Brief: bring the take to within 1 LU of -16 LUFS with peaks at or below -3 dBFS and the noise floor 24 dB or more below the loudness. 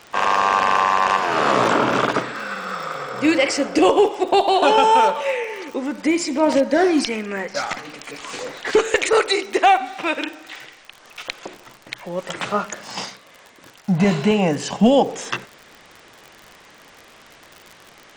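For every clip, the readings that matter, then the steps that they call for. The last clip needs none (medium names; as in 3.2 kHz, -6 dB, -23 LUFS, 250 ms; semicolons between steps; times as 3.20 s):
tick rate 52 per s; loudness -19.0 LUFS; peak level -4.0 dBFS; loudness target -16.0 LUFS
-> de-click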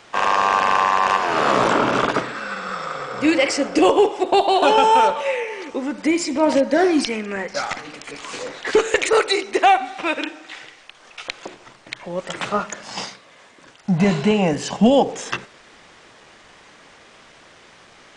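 tick rate 0.11 per s; loudness -19.0 LUFS; peak level -4.0 dBFS; loudness target -16.0 LUFS
-> trim +3 dB; peak limiter -3 dBFS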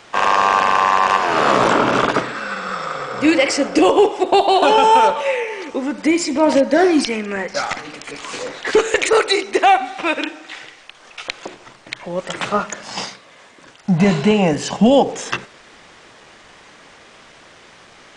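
loudness -16.5 LUFS; peak level -3.0 dBFS; noise floor -46 dBFS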